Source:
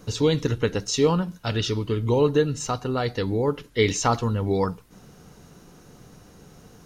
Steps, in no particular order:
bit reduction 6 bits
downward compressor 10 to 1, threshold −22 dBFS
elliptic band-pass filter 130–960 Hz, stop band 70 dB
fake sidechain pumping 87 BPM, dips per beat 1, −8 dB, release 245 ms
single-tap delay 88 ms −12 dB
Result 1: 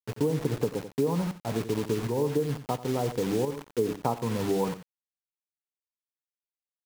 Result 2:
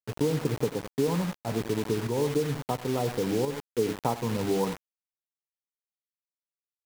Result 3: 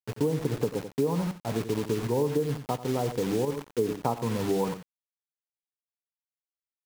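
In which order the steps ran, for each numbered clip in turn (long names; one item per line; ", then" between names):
elliptic band-pass filter, then bit reduction, then downward compressor, then single-tap delay, then fake sidechain pumping
elliptic band-pass filter, then downward compressor, then single-tap delay, then bit reduction, then fake sidechain pumping
elliptic band-pass filter, then bit reduction, then single-tap delay, then fake sidechain pumping, then downward compressor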